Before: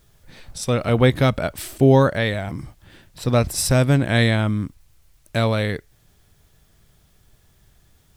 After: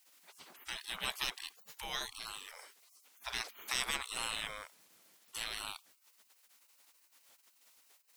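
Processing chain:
gate on every frequency bin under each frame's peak −30 dB weak
level +1 dB

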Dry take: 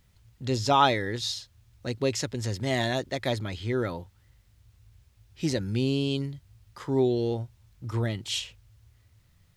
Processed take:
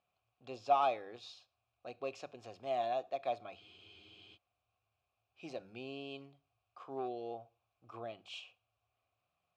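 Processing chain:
hard clipping −17 dBFS, distortion −17 dB
formant filter a
mains-hum notches 50/100/150/200 Hz
convolution reverb RT60 0.45 s, pre-delay 23 ms, DRR 19.5 dB
frozen spectrum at 0:03.63, 0.72 s
level +1 dB

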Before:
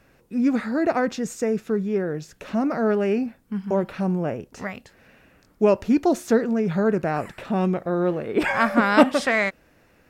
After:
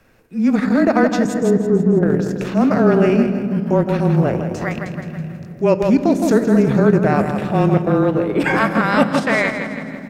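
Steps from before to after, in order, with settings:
0:01.34–0:02.03: Bessel low-pass filter 810 Hz, order 8
repeating echo 163 ms, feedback 47%, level −7 dB
transient designer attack −6 dB, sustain −10 dB
in parallel at −2 dB: brickwall limiter −14.5 dBFS, peak gain reduction 9.5 dB
on the sum: frequency shifter −22 Hz
automatic gain control gain up to 7 dB
on a send at −12.5 dB: convolution reverb RT60 3.5 s, pre-delay 3 ms
on the sum: level −1.5 dB

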